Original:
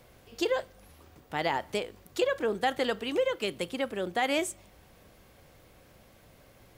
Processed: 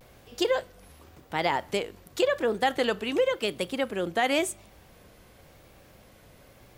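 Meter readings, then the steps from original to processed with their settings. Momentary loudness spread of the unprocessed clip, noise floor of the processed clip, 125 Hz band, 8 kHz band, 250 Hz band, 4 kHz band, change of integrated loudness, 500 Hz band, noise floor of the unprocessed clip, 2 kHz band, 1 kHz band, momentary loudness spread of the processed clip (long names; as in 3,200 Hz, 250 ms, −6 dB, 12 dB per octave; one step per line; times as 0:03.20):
8 LU, −55 dBFS, +3.0 dB, +3.0 dB, +3.0 dB, +3.0 dB, +3.0 dB, +3.0 dB, −58 dBFS, +3.0 dB, +3.0 dB, 7 LU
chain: pitch vibrato 0.92 Hz 73 cents
level +3 dB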